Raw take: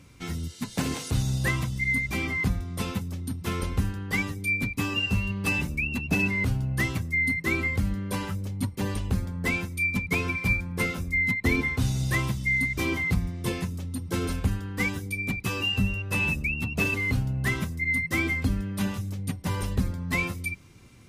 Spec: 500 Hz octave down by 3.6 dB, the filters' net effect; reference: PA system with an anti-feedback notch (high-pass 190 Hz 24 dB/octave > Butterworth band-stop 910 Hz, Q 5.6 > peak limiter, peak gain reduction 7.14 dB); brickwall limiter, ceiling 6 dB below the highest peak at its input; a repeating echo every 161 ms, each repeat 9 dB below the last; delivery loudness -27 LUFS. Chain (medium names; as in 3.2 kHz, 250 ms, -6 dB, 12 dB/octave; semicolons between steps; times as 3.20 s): peaking EQ 500 Hz -5 dB; peak limiter -18.5 dBFS; high-pass 190 Hz 24 dB/octave; Butterworth band-stop 910 Hz, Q 5.6; feedback delay 161 ms, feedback 35%, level -9 dB; trim +5 dB; peak limiter -19 dBFS